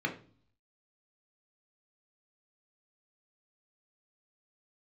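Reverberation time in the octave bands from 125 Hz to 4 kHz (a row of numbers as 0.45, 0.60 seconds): 0.85, 0.70, 0.45, 0.40, 0.35, 0.50 seconds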